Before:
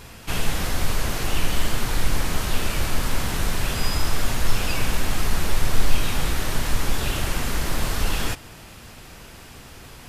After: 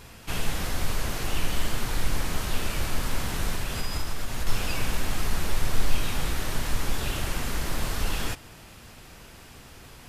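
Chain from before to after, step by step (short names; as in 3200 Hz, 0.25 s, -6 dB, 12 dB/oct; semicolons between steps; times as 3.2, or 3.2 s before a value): 3.54–4.47 compressor, threshold -18 dBFS, peak gain reduction 6.5 dB; gain -4.5 dB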